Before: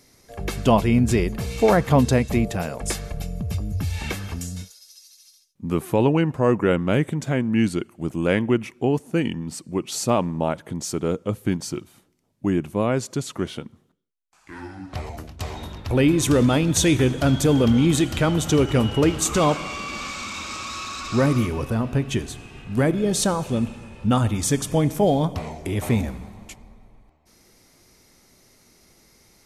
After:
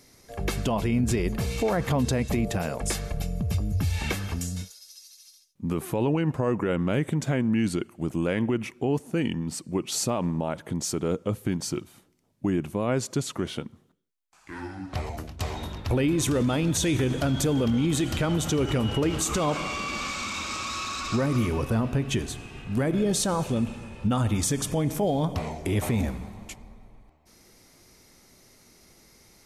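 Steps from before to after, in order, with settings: peak limiter -16.5 dBFS, peak gain reduction 11.5 dB

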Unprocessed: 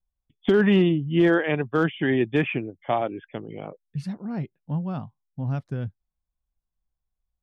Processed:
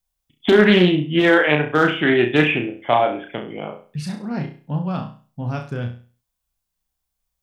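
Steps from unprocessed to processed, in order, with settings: tilt EQ +2 dB/octave; flutter echo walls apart 5.7 m, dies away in 0.39 s; loudspeaker Doppler distortion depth 0.18 ms; trim +7 dB

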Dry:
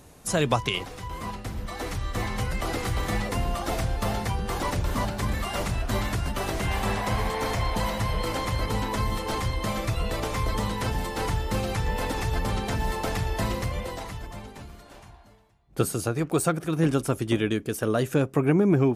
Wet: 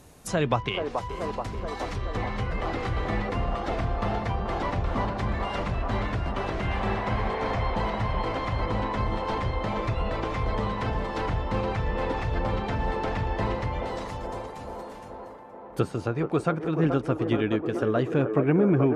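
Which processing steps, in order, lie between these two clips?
low-pass that closes with the level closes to 2.9 kHz, closed at -24.5 dBFS; feedback echo behind a band-pass 430 ms, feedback 71%, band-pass 610 Hz, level -4 dB; trim -1 dB

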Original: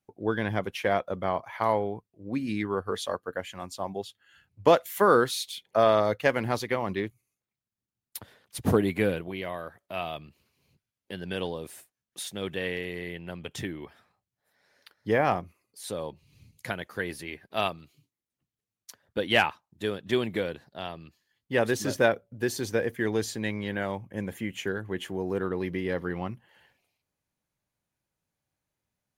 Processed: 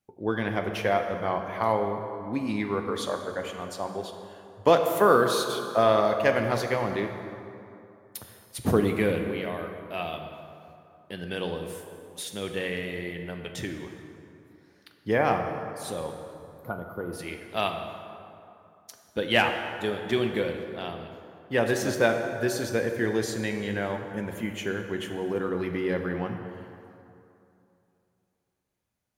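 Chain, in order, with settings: time-frequency box 16.34–17.13 s, 1.5–11 kHz -24 dB; plate-style reverb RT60 2.8 s, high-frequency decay 0.55×, DRR 4.5 dB

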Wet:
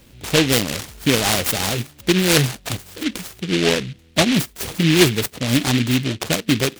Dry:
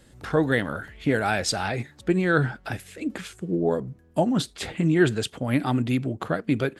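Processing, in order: delay time shaken by noise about 2.7 kHz, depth 0.23 ms; trim +5.5 dB

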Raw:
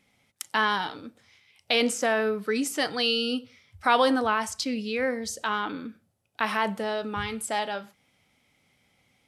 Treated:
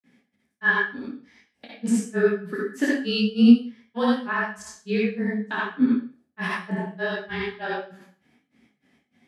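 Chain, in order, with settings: high-pass 130 Hz; treble shelf 5.3 kHz -6.5 dB; peak limiter -18.5 dBFS, peak gain reduction 8.5 dB; frequency shift -20 Hz; small resonant body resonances 250/1700 Hz, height 17 dB, ringing for 40 ms; granulator 155 ms, grains 3.3 per s, spray 100 ms, pitch spread up and down by 0 st; reverberation RT60 0.40 s, pre-delay 48 ms, DRR -4 dB; detune thickener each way 48 cents; trim +4 dB

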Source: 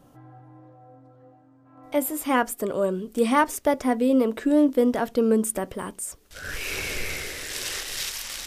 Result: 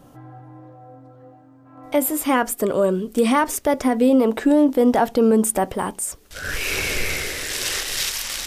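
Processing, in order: 4.03–6.05 s: peaking EQ 810 Hz +10 dB 0.34 oct; peak limiter -15 dBFS, peak gain reduction 7 dB; trim +6.5 dB

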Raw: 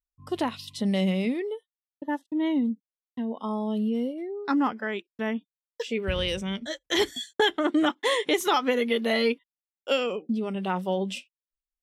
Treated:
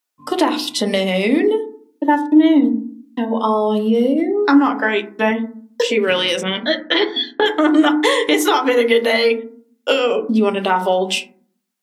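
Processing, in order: high-pass 190 Hz 24 dB/octave; bass shelf 250 Hz -7 dB; hum notches 50/100/150/200/250/300 Hz; compression 10:1, threshold -30 dBFS, peak gain reduction 12.5 dB; reverberation RT60 0.55 s, pre-delay 3 ms, DRR 4.5 dB; wow and flutter 17 cents; 4.78–5.31 s: doubling 15 ms -7 dB; 6.43–7.46 s: steep low-pass 4.4 kHz 48 dB/octave; loudness maximiser +18 dB; trim -1 dB

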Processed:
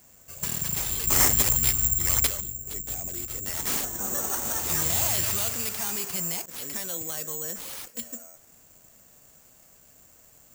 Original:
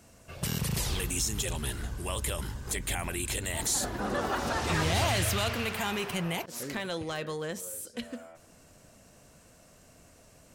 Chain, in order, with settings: 1.07–2.27 s: tone controls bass +10 dB, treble +10 dB; 2.41–3.47 s: time-frequency box 780–11000 Hz -12 dB; careless resampling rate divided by 6×, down none, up zero stuff; trim -6 dB

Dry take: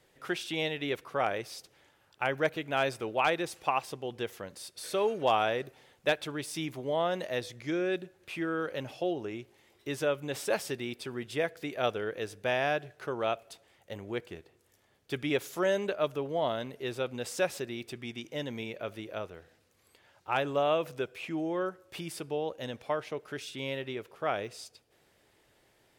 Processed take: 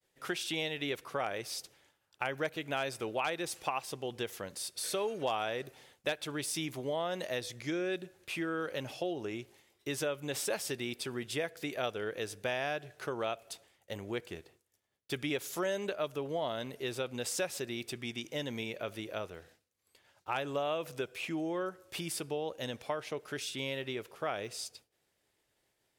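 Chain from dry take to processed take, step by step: expander -57 dBFS; peaking EQ 9.9 kHz +6.5 dB 2.5 oct; compression 2.5:1, threshold -33 dBFS, peak gain reduction 8.5 dB

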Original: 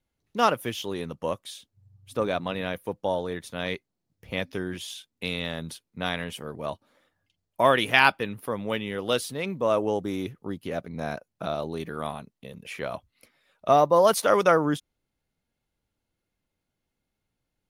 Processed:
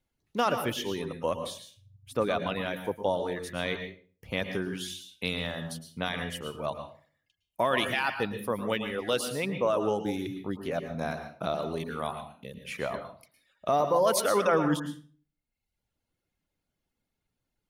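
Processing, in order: peak limiter -15 dBFS, peak gain reduction 11 dB; reverb removal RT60 1 s; on a send: reverberation RT60 0.40 s, pre-delay 105 ms, DRR 7 dB

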